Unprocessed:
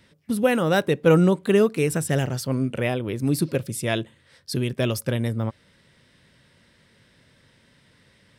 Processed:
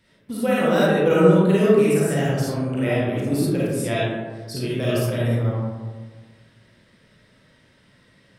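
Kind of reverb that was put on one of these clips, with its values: algorithmic reverb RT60 1.5 s, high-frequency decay 0.35×, pre-delay 10 ms, DRR -8 dB; trim -6.5 dB

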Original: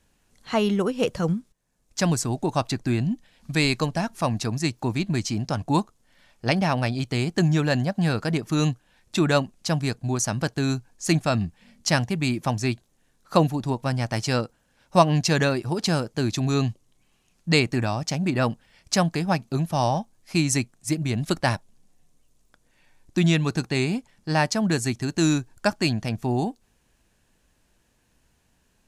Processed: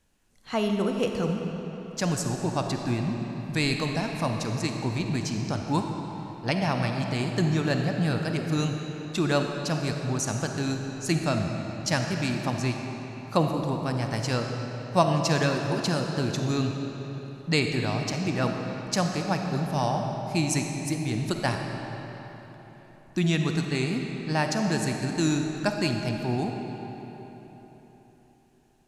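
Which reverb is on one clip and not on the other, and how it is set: algorithmic reverb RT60 4 s, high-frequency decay 0.75×, pre-delay 10 ms, DRR 3 dB; trim -4.5 dB

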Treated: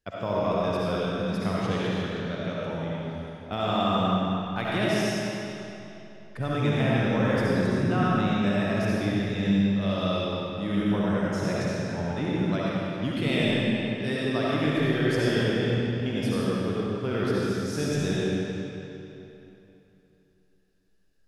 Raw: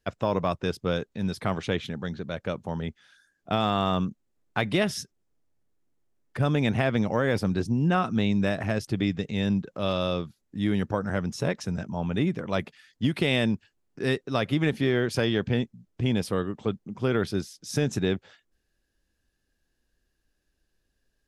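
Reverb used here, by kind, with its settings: algorithmic reverb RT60 3.1 s, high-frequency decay 0.85×, pre-delay 30 ms, DRR -7 dB; trim -6.5 dB

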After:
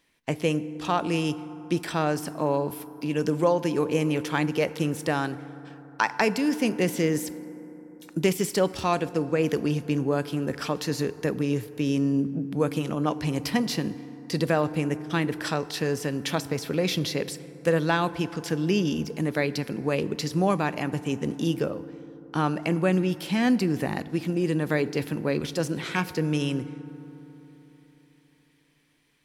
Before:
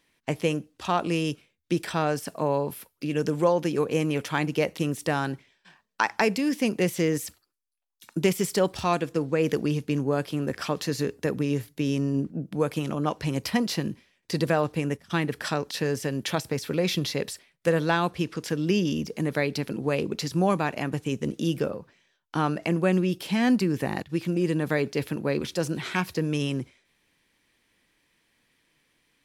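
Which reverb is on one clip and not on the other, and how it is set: FDN reverb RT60 3.8 s, high-frequency decay 0.35×, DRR 15 dB

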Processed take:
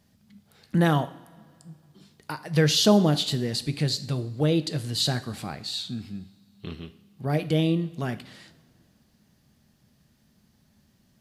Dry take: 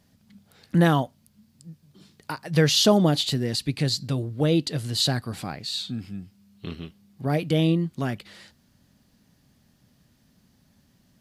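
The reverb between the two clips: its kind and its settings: two-slope reverb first 0.6 s, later 2.4 s, from -17 dB, DRR 11 dB; trim -2 dB

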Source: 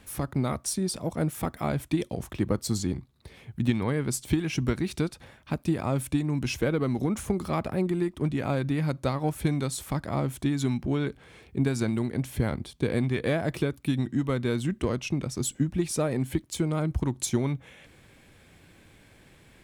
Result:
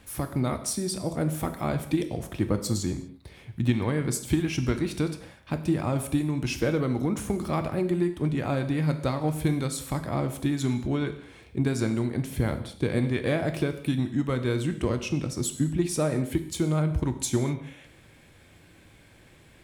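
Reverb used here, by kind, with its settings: gated-style reverb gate 270 ms falling, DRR 7.5 dB

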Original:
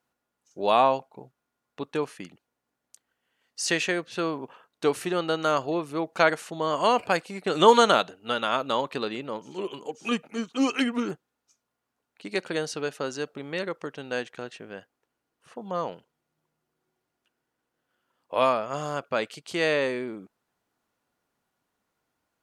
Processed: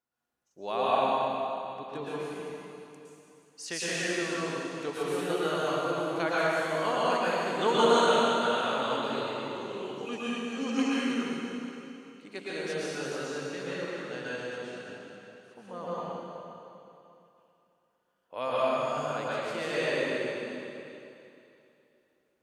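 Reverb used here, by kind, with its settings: plate-style reverb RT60 2.9 s, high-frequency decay 0.95×, pre-delay 100 ms, DRR -9 dB; trim -12.5 dB

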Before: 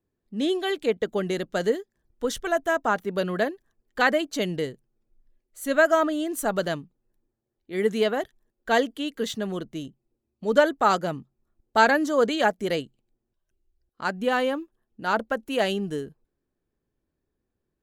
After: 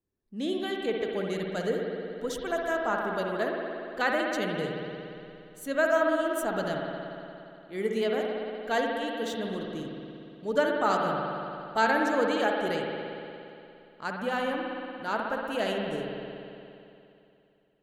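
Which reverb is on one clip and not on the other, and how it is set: spring tank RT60 2.8 s, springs 58 ms, chirp 30 ms, DRR 0 dB; trim -7 dB

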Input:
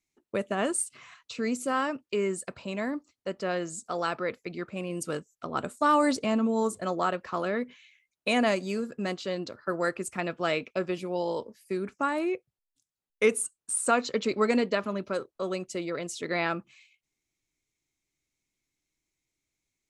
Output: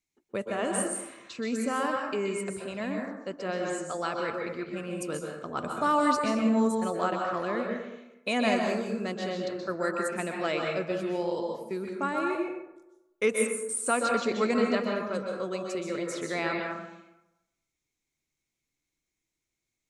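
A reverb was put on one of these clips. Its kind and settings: plate-style reverb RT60 0.94 s, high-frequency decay 0.5×, pre-delay 115 ms, DRR 0.5 dB; trim -3 dB

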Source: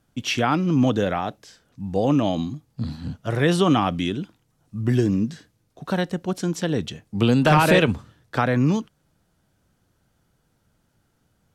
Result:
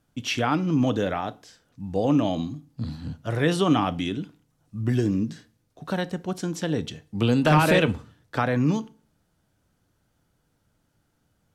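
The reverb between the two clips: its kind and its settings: FDN reverb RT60 0.41 s, low-frequency decay 1.1×, high-frequency decay 0.85×, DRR 14 dB; trim -3 dB

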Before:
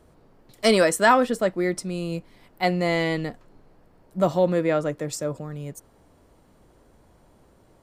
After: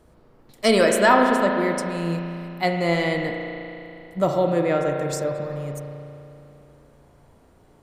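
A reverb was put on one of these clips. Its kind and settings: spring tank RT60 2.9 s, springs 35 ms, chirp 45 ms, DRR 2 dB

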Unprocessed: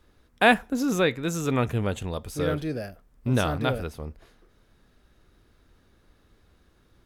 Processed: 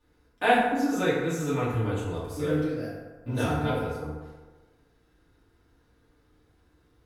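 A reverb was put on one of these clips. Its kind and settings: FDN reverb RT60 1.3 s, low-frequency decay 0.8×, high-frequency decay 0.5×, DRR -10 dB; trim -13 dB

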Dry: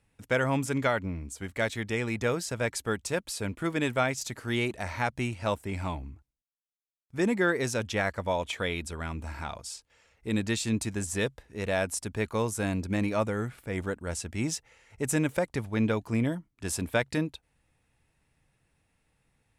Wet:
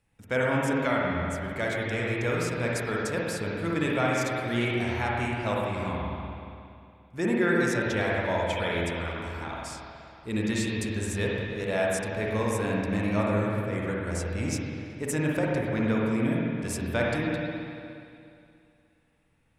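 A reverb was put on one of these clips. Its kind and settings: spring tank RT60 2.5 s, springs 47/59 ms, chirp 70 ms, DRR -4 dB; trim -3 dB

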